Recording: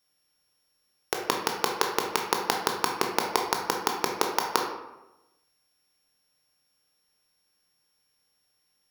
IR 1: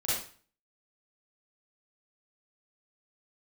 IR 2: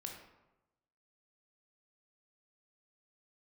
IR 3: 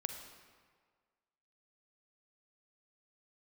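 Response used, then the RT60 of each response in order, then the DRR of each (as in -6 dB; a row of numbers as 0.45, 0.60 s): 2; 0.40, 1.0, 1.7 s; -10.0, 1.0, 5.5 dB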